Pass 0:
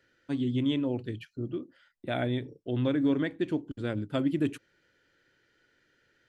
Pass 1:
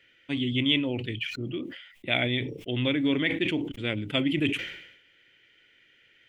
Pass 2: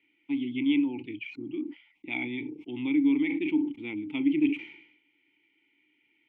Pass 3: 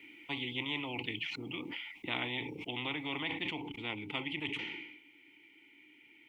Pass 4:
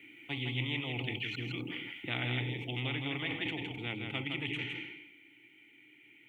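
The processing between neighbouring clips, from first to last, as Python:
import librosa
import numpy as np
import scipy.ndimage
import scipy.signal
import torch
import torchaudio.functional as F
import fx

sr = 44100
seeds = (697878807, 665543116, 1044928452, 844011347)

y1 = fx.band_shelf(x, sr, hz=2600.0, db=15.5, octaves=1.0)
y1 = fx.sustainer(y1, sr, db_per_s=68.0)
y2 = fx.vowel_filter(y1, sr, vowel='u')
y2 = y2 * librosa.db_to_amplitude(6.0)
y3 = fx.rider(y2, sr, range_db=5, speed_s=2.0)
y3 = fx.spectral_comp(y3, sr, ratio=4.0)
y3 = y3 * librosa.db_to_amplitude(-7.5)
y4 = fx.graphic_eq_31(y3, sr, hz=(125, 1000, 1600, 5000), db=(11, -11, 4, -11))
y4 = fx.echo_multitap(y4, sr, ms=(162, 256), db=(-5.0, -19.0))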